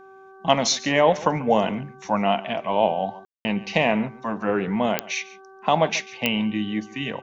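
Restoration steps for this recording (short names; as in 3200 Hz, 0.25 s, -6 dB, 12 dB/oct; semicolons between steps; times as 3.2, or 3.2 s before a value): de-click; de-hum 384.7 Hz, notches 4; room tone fill 3.25–3.45; inverse comb 0.141 s -19 dB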